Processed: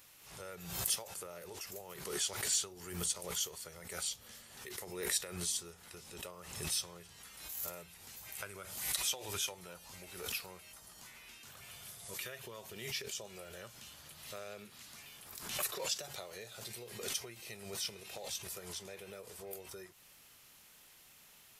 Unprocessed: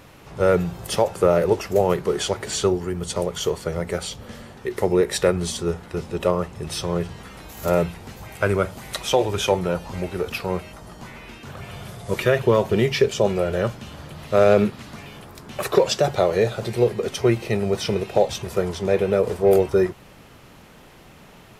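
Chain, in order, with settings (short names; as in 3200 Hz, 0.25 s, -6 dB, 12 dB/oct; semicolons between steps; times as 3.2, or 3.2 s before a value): low shelf 220 Hz +8 dB; compressor 4:1, threshold -22 dBFS, peak gain reduction 11.5 dB; pre-emphasis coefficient 0.97; backwards sustainer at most 62 dB/s; gain -2.5 dB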